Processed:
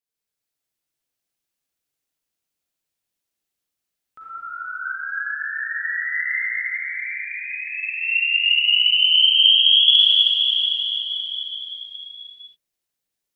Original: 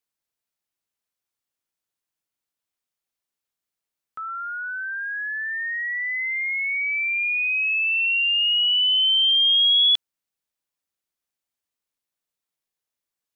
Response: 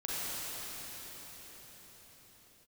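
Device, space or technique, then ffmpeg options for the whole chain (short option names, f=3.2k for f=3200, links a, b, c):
cathedral: -filter_complex "[0:a]asettb=1/sr,asplit=3[a][b][c];[a]atrim=end=6.454[d];[b]atrim=start=6.45:end=8.03,asetpts=PTS-STARTPTS,afade=t=in:d=0.004:c=qsin,afade=t=out:st=1.576:d=0.004:c=qsin,agate=range=-33dB:threshold=-16dB:ratio=3:detection=peak[e];[c]atrim=start=8.026[f];[d][e]acrossfade=d=0.004:c1=hsin:c2=qsin[g];[g][f]acrossfade=d=0.004:c1=qsin:c2=hsin,equalizer=f=1.1k:t=o:w=1.2:g=-5[h];[1:a]atrim=start_sample=2205[i];[h][i]afir=irnorm=-1:irlink=0,volume=-1.5dB"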